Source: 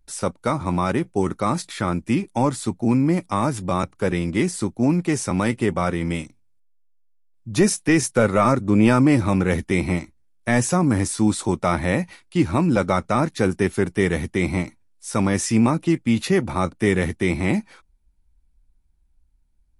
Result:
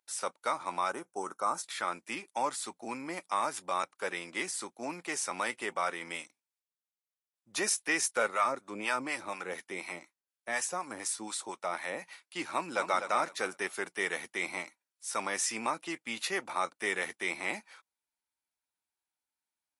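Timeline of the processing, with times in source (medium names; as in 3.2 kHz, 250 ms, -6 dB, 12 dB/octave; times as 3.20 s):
0.89–1.63 s: time-frequency box 1.6–5.2 kHz -11 dB
8.28–12.02 s: harmonic tremolo 4.1 Hz, crossover 730 Hz
12.54–12.99 s: echo throw 250 ms, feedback 25%, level -8 dB
whole clip: high-pass 780 Hz 12 dB/octave; trim -5 dB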